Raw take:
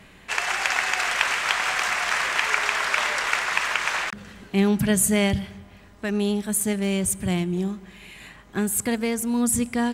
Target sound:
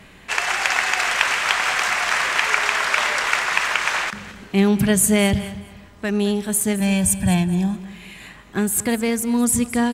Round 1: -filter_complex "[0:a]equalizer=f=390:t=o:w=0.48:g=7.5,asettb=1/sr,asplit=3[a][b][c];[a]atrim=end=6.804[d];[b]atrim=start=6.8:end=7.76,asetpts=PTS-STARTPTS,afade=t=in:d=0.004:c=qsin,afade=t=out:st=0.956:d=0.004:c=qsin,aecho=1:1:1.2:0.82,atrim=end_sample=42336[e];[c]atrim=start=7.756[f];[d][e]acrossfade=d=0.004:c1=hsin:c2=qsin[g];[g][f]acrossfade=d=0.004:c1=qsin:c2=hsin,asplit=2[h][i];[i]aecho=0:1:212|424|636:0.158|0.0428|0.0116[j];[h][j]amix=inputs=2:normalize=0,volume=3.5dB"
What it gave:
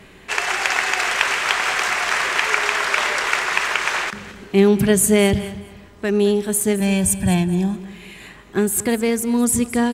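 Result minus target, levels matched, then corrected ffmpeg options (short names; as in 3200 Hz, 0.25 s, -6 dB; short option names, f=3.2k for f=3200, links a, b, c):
500 Hz band +4.5 dB
-filter_complex "[0:a]asettb=1/sr,asplit=3[a][b][c];[a]atrim=end=6.804[d];[b]atrim=start=6.8:end=7.76,asetpts=PTS-STARTPTS,afade=t=in:d=0.004:c=qsin,afade=t=out:st=0.956:d=0.004:c=qsin,aecho=1:1:1.2:0.82,atrim=end_sample=42336[e];[c]atrim=start=7.756[f];[d][e]acrossfade=d=0.004:c1=hsin:c2=qsin[g];[g][f]acrossfade=d=0.004:c1=qsin:c2=hsin,asplit=2[h][i];[i]aecho=0:1:212|424|636:0.158|0.0428|0.0116[j];[h][j]amix=inputs=2:normalize=0,volume=3.5dB"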